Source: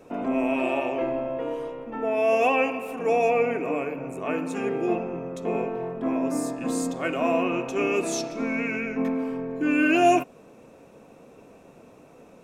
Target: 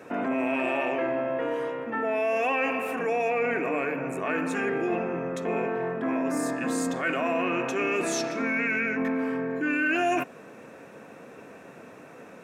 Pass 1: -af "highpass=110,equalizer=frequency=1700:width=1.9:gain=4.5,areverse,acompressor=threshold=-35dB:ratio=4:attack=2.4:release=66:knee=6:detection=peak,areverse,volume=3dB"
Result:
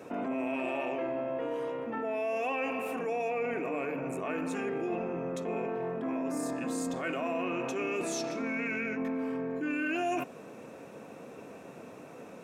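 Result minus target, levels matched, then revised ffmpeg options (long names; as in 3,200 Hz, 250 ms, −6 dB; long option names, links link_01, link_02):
downward compressor: peak gain reduction +5.5 dB; 2,000 Hz band −3.0 dB
-af "highpass=110,equalizer=frequency=1700:width=1.9:gain=12.5,areverse,acompressor=threshold=-27dB:ratio=4:attack=2.4:release=66:knee=6:detection=peak,areverse,volume=3dB"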